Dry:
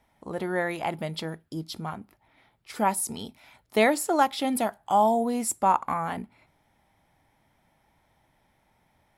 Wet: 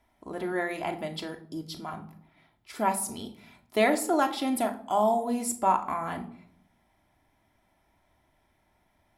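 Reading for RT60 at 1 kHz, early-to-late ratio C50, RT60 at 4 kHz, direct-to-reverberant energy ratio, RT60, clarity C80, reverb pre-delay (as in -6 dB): 0.55 s, 13.0 dB, 0.35 s, 4.0 dB, 0.65 s, 17.5 dB, 3 ms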